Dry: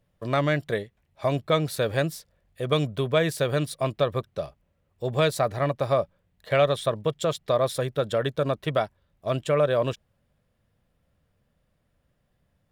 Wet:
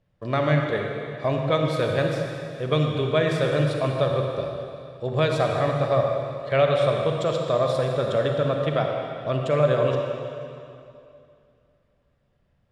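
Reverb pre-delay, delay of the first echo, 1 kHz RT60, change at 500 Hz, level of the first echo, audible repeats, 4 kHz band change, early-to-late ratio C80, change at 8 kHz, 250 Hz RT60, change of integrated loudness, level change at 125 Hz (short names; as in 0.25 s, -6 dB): 31 ms, none, 2.6 s, +2.5 dB, none, none, 0.0 dB, 2.5 dB, n/a, 2.7 s, +2.0 dB, +4.0 dB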